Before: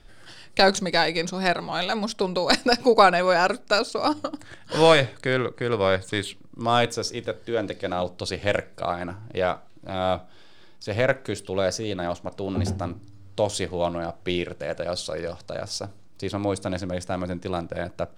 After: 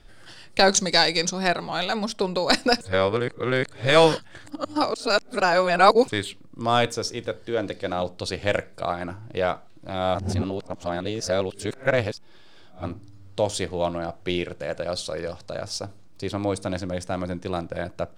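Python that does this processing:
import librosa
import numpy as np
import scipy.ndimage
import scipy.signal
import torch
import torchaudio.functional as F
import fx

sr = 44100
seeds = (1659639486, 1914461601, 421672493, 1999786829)

y = fx.peak_eq(x, sr, hz=6100.0, db=10.5, octaves=1.2, at=(0.71, 1.33))
y = fx.edit(y, sr, fx.reverse_span(start_s=2.81, length_s=3.27),
    fx.reverse_span(start_s=10.15, length_s=2.69), tone=tone)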